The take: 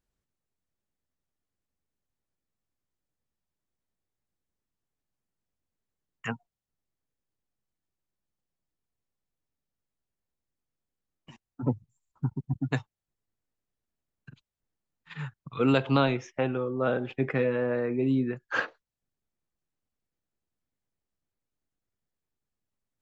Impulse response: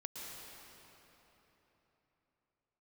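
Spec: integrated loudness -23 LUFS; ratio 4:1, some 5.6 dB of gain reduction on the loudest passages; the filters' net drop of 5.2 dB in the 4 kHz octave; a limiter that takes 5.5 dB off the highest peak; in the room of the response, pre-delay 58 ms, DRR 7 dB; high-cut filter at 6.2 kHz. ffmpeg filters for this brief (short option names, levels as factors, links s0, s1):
-filter_complex "[0:a]lowpass=6200,equalizer=f=4000:t=o:g=-6.5,acompressor=threshold=0.0562:ratio=4,alimiter=limit=0.0841:level=0:latency=1,asplit=2[s0][s1];[1:a]atrim=start_sample=2205,adelay=58[s2];[s1][s2]afir=irnorm=-1:irlink=0,volume=0.531[s3];[s0][s3]amix=inputs=2:normalize=0,volume=3.35"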